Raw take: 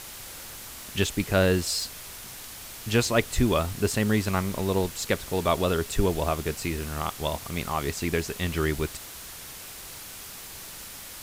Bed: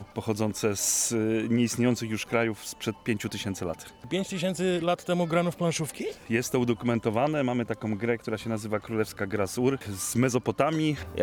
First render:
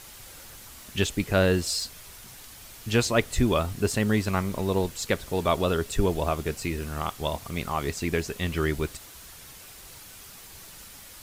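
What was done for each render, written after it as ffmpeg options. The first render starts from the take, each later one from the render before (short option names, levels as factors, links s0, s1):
-af "afftdn=nr=6:nf=-42"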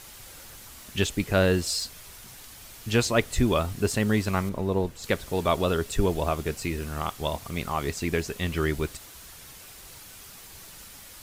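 -filter_complex "[0:a]asettb=1/sr,asplit=3[s0][s1][s2];[s0]atrim=end=4.494[s3];[s1]atrim=start=4.49:end=5.04,asetpts=PTS-STARTPTS,afade=t=in:d=0.004:c=qsin,afade=t=out:st=0.546:d=0.004:c=qsin,highshelf=f=2100:g=-10.5[s4];[s2]atrim=start=5.036[s5];[s3][s4]acrossfade=d=0.004:c1=hsin:c2=qsin[s6];[s6][s5]acrossfade=d=0.004:c1=qsin:c2=hsin"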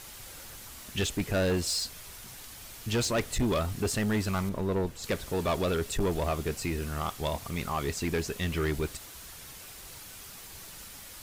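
-af "asoftclip=type=tanh:threshold=0.075"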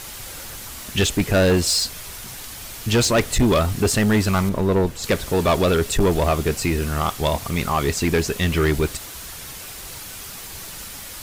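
-af "volume=3.35"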